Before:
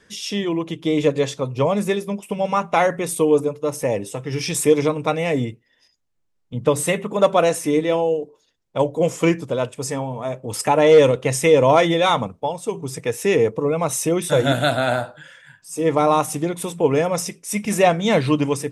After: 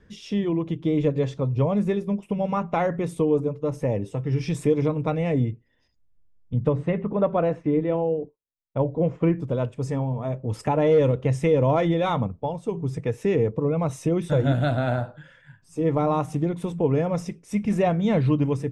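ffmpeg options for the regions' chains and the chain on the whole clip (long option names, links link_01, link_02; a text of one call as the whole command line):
ffmpeg -i in.wav -filter_complex "[0:a]asettb=1/sr,asplit=3[link_01][link_02][link_03];[link_01]atrim=end=6.684[link_04];[link_02]atrim=start=6.68:end=9.4,asetpts=PTS-STARTPTS,afade=type=in:duration=0.004:curve=qsin,afade=type=out:start_time=2.716:duration=0.004:curve=qsin,lowpass=2300,agate=range=-33dB:threshold=-38dB:ratio=3:release=100:detection=peak[link_05];[link_03]atrim=start=9.396[link_06];[link_04][link_05]acrossfade=duration=0.004:curve1=hsin:curve2=qsin[link_07];[link_07][link_06]acrossfade=duration=0.004:curve1=qsin:curve2=hsin,aemphasis=mode=reproduction:type=riaa,acompressor=threshold=-16dB:ratio=1.5,volume=-6dB" out.wav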